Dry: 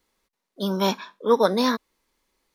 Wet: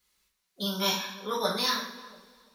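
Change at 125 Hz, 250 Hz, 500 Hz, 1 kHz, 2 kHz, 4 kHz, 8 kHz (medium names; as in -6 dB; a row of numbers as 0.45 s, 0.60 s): -7.5 dB, -10.5 dB, -11.5 dB, -6.5 dB, -1.5 dB, +2.5 dB, +3.5 dB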